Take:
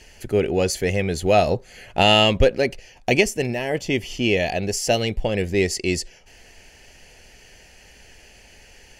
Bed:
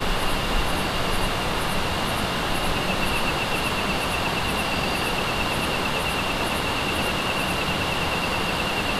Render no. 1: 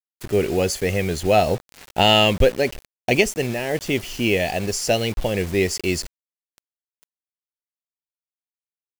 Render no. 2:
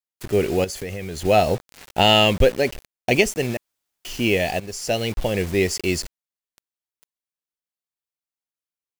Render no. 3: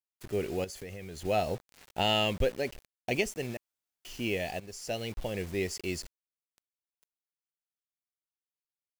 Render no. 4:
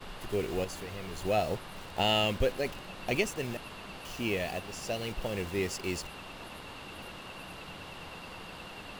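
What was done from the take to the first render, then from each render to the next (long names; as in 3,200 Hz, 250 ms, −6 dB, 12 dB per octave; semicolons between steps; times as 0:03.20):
pitch vibrato 1.6 Hz 36 cents; bit reduction 6 bits
0:00.64–0:01.25: downward compressor, threshold −27 dBFS; 0:03.57–0:04.05: fill with room tone; 0:04.60–0:05.36: fade in equal-power, from −13.5 dB
level −12 dB
mix in bed −20.5 dB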